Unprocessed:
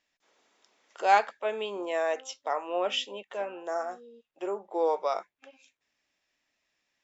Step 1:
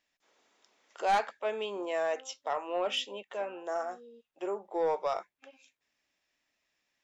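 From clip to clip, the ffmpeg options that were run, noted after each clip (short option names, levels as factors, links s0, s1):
-af "asoftclip=type=tanh:threshold=0.112,volume=0.841"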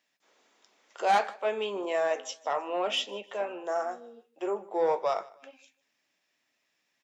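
-af "highpass=f=120:w=0.5412,highpass=f=120:w=1.3066,flanger=delay=7.7:depth=2.9:regen=-72:speed=2:shape=sinusoidal,aecho=1:1:153|306:0.0794|0.0254,volume=2.37"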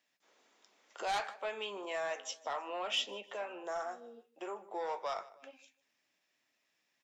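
-filter_complex "[0:a]acrossover=split=790|2600[s0][s1][s2];[s0]acompressor=threshold=0.00891:ratio=6[s3];[s1]asoftclip=type=tanh:threshold=0.0316[s4];[s3][s4][s2]amix=inputs=3:normalize=0,volume=0.708"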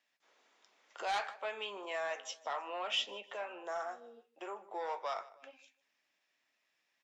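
-af "lowpass=f=4000:p=1,lowshelf=f=440:g=-9.5,volume=1.26"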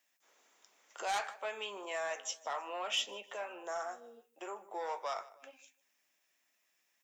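-af "aexciter=amount=1.8:drive=9:freq=6000"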